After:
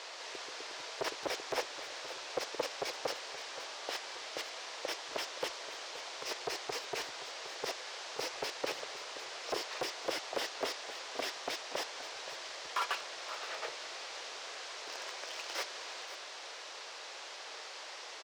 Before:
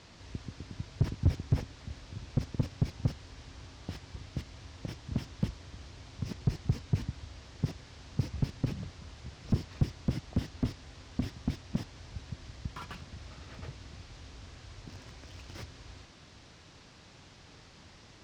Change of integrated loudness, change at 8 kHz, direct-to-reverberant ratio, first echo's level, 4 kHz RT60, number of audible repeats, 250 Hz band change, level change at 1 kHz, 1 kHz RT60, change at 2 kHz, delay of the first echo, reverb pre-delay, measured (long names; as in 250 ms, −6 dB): −3.0 dB, +11.0 dB, no reverb audible, −13.5 dB, no reverb audible, 1, −15.0 dB, +11.0 dB, no reverb audible, +11.0 dB, 524 ms, no reverb audible